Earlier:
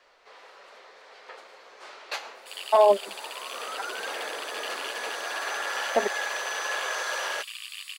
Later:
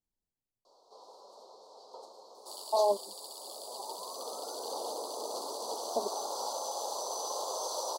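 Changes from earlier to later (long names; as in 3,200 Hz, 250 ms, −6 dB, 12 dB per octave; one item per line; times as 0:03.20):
speech −8.0 dB
first sound: entry +0.65 s
master: add elliptic band-stop filter 970–4,300 Hz, stop band 60 dB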